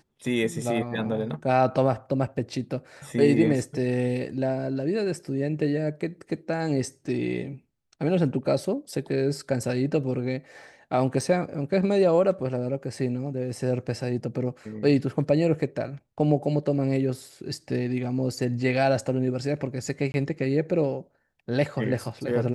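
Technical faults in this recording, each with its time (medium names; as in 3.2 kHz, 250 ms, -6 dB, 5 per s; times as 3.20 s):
11.21 s: dropout 4 ms
20.12–20.14 s: dropout 21 ms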